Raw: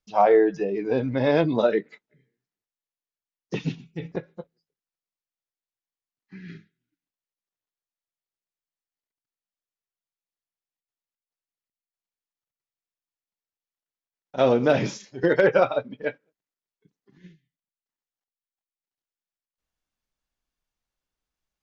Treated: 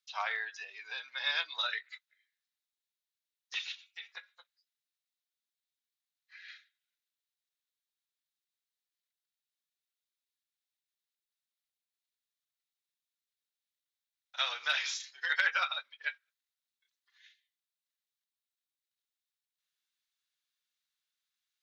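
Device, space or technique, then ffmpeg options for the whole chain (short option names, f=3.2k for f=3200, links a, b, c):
headphones lying on a table: -filter_complex "[0:a]highpass=f=1.4k:w=0.5412,highpass=f=1.4k:w=1.3066,equalizer=f=3.8k:t=o:w=0.38:g=8.5,asettb=1/sr,asplit=3[a][b][c];[a]atrim=end=0.754[d];[b]atrim=start=0.75:end=1.53,asetpts=PTS-STARTPTS,afade=t=in:d=0.004:c=qsin,afade=t=out:st=0.776:d=0.004:c=qsin,bandreject=f=2k:w=14[e];[c]atrim=start=1.526[f];[d][e]acrossfade=d=0.004:c1=hsin:c2=qsin[g];[g][f]acrossfade=d=0.004:c1=qsin:c2=hsin"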